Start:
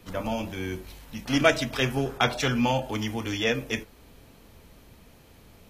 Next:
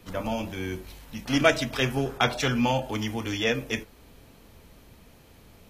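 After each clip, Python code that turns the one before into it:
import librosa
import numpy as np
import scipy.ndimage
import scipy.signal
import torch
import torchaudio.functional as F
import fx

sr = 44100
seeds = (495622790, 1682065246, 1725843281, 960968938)

y = x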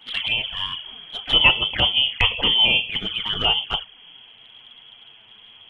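y = fx.freq_invert(x, sr, carrier_hz=3300)
y = fx.env_flanger(y, sr, rest_ms=11.2, full_db=-24.5)
y = F.gain(torch.from_numpy(y), 7.5).numpy()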